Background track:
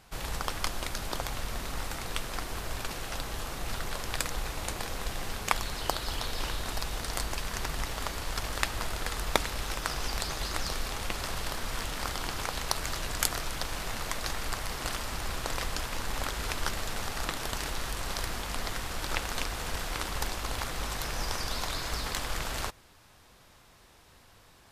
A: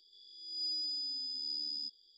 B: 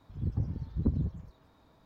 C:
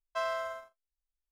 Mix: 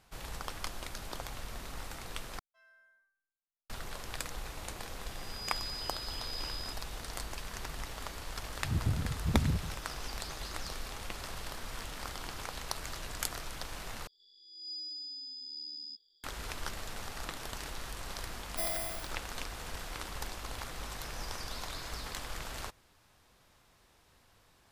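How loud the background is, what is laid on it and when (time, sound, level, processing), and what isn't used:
background track −7.5 dB
0:02.39: overwrite with C −8.5 dB + resonators tuned to a chord G3 minor, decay 0.61 s
0:04.84: mix in A −4.5 dB
0:08.49: mix in B −2.5 dB + leveller curve on the samples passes 1
0:14.07: overwrite with A −5 dB
0:18.42: mix in C −2.5 dB + samples in bit-reversed order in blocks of 32 samples

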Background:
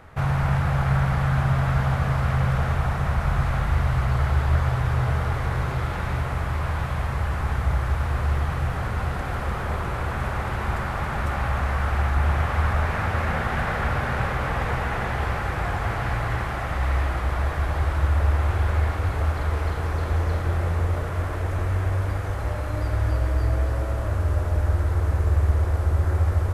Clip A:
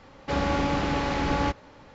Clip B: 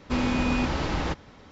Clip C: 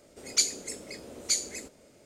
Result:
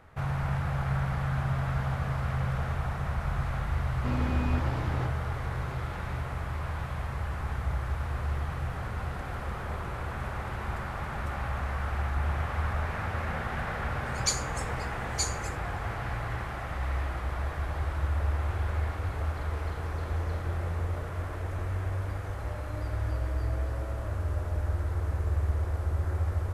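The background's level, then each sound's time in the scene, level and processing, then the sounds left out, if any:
background −8 dB
0:03.94: mix in B −7.5 dB + parametric band 5,800 Hz −9.5 dB 2.3 octaves
0:13.89: mix in C −5 dB + comb filter 6.4 ms, depth 32%
not used: A

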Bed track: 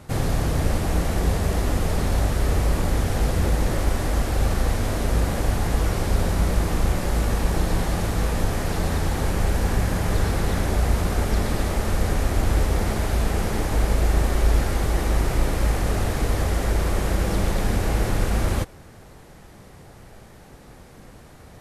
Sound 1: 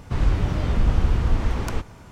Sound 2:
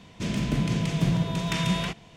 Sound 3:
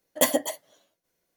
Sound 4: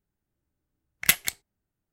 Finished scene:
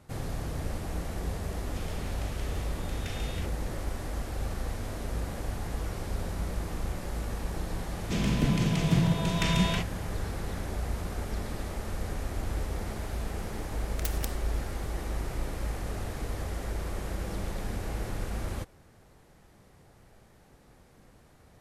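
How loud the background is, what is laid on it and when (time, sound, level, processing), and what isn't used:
bed track −12 dB
0:01.54: mix in 2 −12 dB + linear-phase brick-wall high-pass 1,100 Hz
0:07.90: mix in 2 −0.5 dB
0:12.96: mix in 4 −9 dB + every bin compressed towards the loudest bin 10 to 1
not used: 1, 3

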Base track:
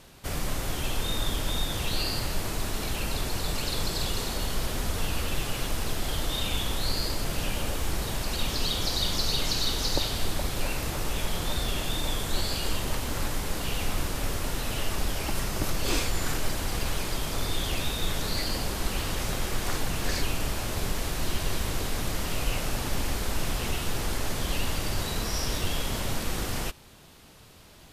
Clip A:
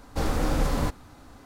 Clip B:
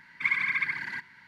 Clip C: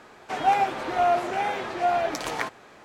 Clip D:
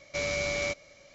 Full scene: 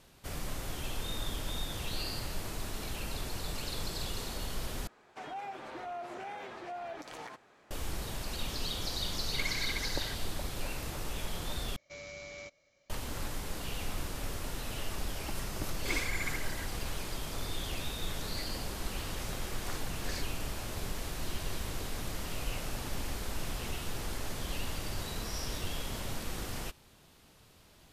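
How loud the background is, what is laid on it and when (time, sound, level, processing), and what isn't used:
base track −8 dB
0:04.87: overwrite with C −12.5 dB + brickwall limiter −21.5 dBFS
0:09.14: mix in B −11 dB + stylus tracing distortion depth 0.082 ms
0:11.76: overwrite with D −15.5 dB
0:15.65: mix in B −10.5 dB
not used: A

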